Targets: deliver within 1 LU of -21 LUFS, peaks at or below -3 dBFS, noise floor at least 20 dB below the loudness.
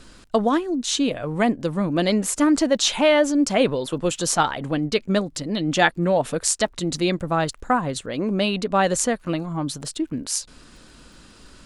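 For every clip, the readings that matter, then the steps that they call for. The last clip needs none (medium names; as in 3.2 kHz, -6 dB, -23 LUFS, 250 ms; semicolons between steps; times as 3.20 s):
tick rate 44 per s; loudness -22.0 LUFS; peak level -2.0 dBFS; loudness target -21.0 LUFS
-> de-click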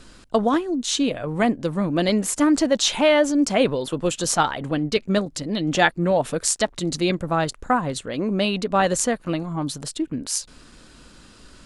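tick rate 0 per s; loudness -22.0 LUFS; peak level -2.0 dBFS; loudness target -21.0 LUFS
-> trim +1 dB; peak limiter -3 dBFS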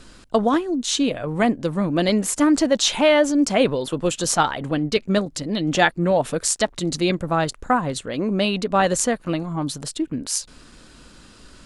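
loudness -21.0 LUFS; peak level -3.0 dBFS; noise floor -49 dBFS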